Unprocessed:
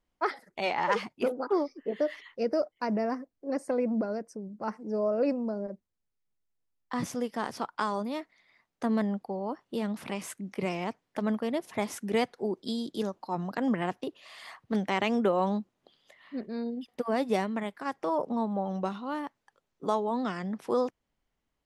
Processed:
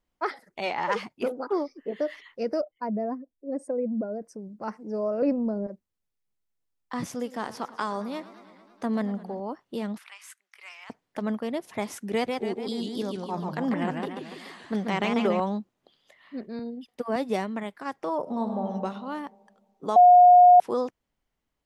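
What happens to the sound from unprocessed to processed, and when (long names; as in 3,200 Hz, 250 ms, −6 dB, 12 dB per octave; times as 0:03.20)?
0:02.61–0:04.22: expanding power law on the bin magnitudes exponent 1.6
0:05.22–0:05.67: spectral tilt −2.5 dB per octave
0:07.08–0:09.40: feedback echo with a swinging delay time 110 ms, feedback 74%, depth 173 cents, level −17.5 dB
0:09.98–0:10.90: four-pole ladder high-pass 1,100 Hz, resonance 25%
0:12.12–0:15.40: feedback echo with a swinging delay time 144 ms, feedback 52%, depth 199 cents, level −4 dB
0:16.59–0:17.16: multiband upward and downward expander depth 40%
0:18.21–0:18.64: thrown reverb, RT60 1.7 s, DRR 3.5 dB
0:19.96–0:20.60: beep over 717 Hz −10 dBFS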